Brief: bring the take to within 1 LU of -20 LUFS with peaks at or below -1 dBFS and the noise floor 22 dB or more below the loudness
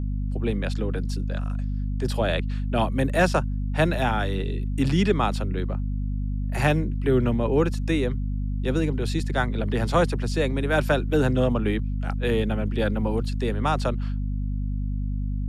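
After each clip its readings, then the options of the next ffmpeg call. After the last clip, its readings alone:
hum 50 Hz; highest harmonic 250 Hz; hum level -24 dBFS; loudness -25.5 LUFS; peak level -9.0 dBFS; loudness target -20.0 LUFS
-> -af "bandreject=f=50:t=h:w=6,bandreject=f=100:t=h:w=6,bandreject=f=150:t=h:w=6,bandreject=f=200:t=h:w=6,bandreject=f=250:t=h:w=6"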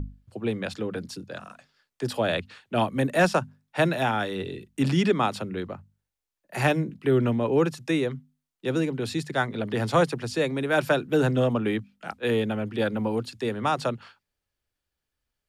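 hum not found; loudness -26.5 LUFS; peak level -10.5 dBFS; loudness target -20.0 LUFS
-> -af "volume=2.11"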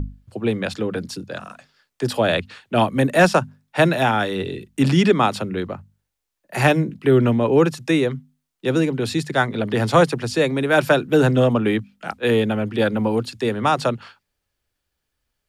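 loudness -20.0 LUFS; peak level -4.0 dBFS; noise floor -79 dBFS

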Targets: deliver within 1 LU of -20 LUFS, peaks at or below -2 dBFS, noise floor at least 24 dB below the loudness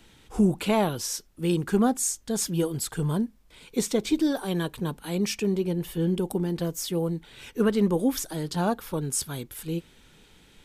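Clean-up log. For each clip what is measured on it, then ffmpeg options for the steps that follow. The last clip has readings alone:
loudness -27.5 LUFS; peak level -12.0 dBFS; loudness target -20.0 LUFS
-> -af "volume=2.37"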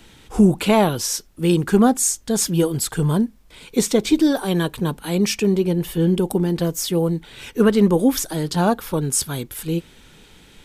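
loudness -20.0 LUFS; peak level -4.5 dBFS; noise floor -49 dBFS

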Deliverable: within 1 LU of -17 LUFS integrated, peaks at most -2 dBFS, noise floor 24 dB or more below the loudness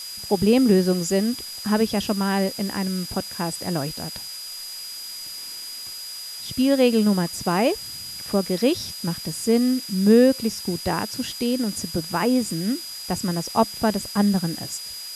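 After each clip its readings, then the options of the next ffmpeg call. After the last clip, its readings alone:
steady tone 4.9 kHz; tone level -34 dBFS; noise floor -35 dBFS; noise floor target -47 dBFS; loudness -23.0 LUFS; peak level -5.5 dBFS; loudness target -17.0 LUFS
-> -af "bandreject=f=4900:w=30"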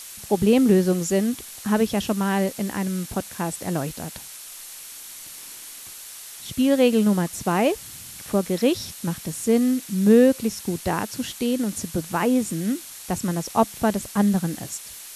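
steady tone not found; noise floor -40 dBFS; noise floor target -47 dBFS
-> -af "afftdn=nr=7:nf=-40"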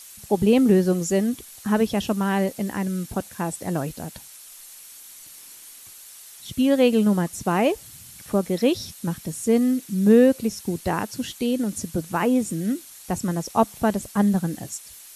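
noise floor -45 dBFS; noise floor target -47 dBFS
-> -af "afftdn=nr=6:nf=-45"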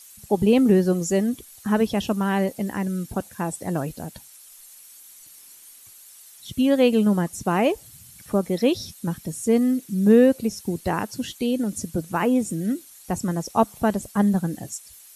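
noise floor -48 dBFS; loudness -23.0 LUFS; peak level -6.0 dBFS; loudness target -17.0 LUFS
-> -af "volume=2,alimiter=limit=0.794:level=0:latency=1"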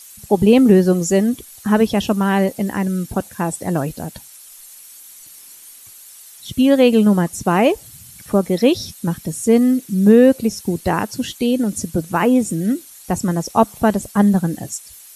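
loudness -17.0 LUFS; peak level -2.0 dBFS; noise floor -42 dBFS

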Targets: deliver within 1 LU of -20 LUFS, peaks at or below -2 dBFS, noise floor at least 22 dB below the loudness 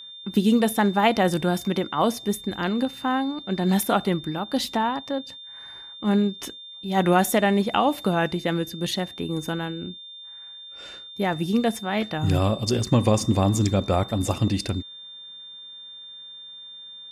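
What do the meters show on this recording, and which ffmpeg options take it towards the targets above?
steady tone 3.6 kHz; tone level -39 dBFS; loudness -24.0 LUFS; peak level -7.5 dBFS; loudness target -20.0 LUFS
-> -af "bandreject=f=3600:w=30"
-af "volume=1.58"

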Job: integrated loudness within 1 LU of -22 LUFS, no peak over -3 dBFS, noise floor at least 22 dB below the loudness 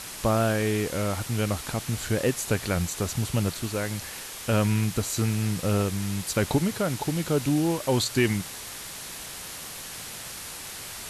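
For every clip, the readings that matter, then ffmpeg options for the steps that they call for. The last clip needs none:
noise floor -39 dBFS; noise floor target -50 dBFS; loudness -27.5 LUFS; peak level -10.5 dBFS; loudness target -22.0 LUFS
-> -af "afftdn=nr=11:nf=-39"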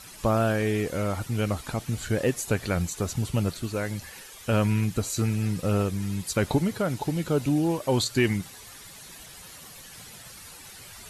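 noise floor -46 dBFS; noise floor target -49 dBFS
-> -af "afftdn=nr=6:nf=-46"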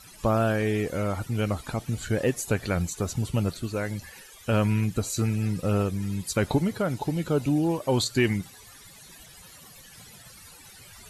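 noise floor -49 dBFS; loudness -27.0 LUFS; peak level -11.0 dBFS; loudness target -22.0 LUFS
-> -af "volume=1.78"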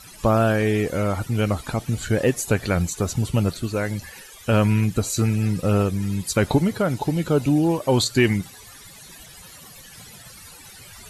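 loudness -22.0 LUFS; peak level -6.0 dBFS; noise floor -44 dBFS

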